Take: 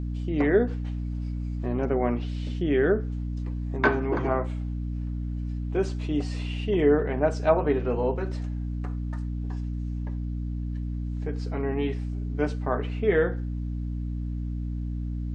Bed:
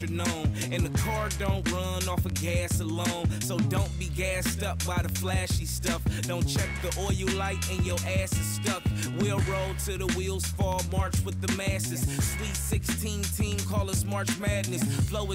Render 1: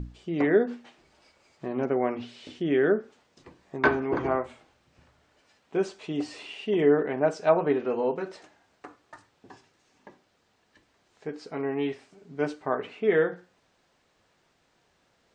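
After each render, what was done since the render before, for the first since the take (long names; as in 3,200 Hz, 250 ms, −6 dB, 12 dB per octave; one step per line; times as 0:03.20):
mains-hum notches 60/120/180/240/300 Hz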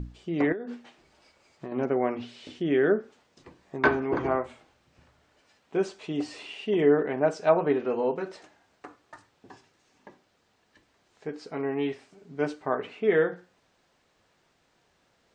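0:00.52–0:01.72: downward compressor 16 to 1, threshold −31 dBFS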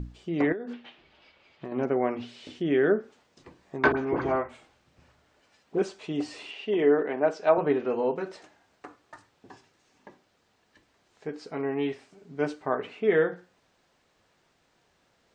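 0:00.73–0:01.65: low-pass with resonance 3,200 Hz, resonance Q 2.5
0:03.92–0:05.82: all-pass dispersion highs, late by 55 ms, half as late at 1,600 Hz
0:06.51–0:07.58: band-pass filter 240–5,200 Hz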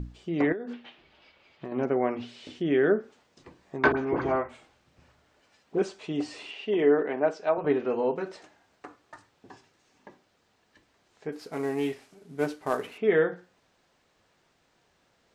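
0:07.18–0:07.64: fade out, to −7 dB
0:11.32–0:12.98: variable-slope delta modulation 64 kbit/s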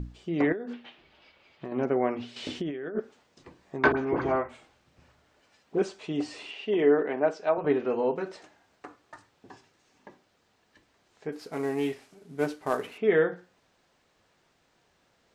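0:02.36–0:03.00: compressor whose output falls as the input rises −33 dBFS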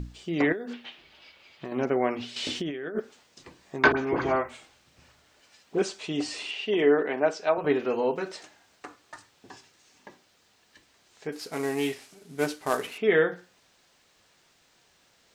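high-shelf EQ 2,200 Hz +11 dB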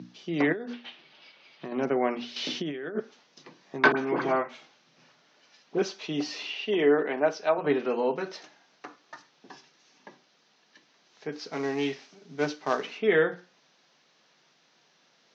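Chebyshev band-pass filter 140–6,100 Hz, order 5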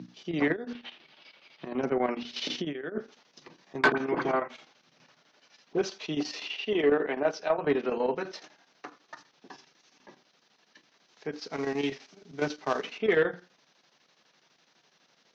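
soft clipping −13 dBFS, distortion −20 dB
square-wave tremolo 12 Hz, depth 60%, duty 75%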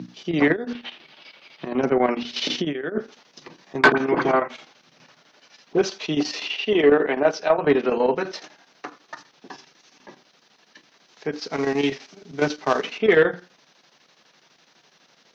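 level +8 dB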